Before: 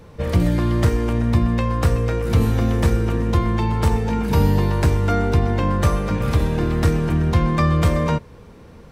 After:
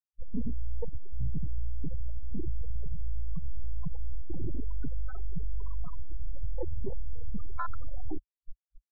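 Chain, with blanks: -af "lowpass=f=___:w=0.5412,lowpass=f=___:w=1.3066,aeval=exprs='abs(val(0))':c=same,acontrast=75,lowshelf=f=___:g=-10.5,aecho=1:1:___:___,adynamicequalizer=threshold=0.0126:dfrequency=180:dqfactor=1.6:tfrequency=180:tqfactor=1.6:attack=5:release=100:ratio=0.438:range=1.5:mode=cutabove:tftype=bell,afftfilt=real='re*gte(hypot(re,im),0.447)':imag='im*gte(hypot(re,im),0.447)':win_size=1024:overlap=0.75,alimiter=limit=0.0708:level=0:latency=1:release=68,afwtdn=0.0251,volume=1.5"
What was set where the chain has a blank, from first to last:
3100, 3100, 420, 1137, 0.2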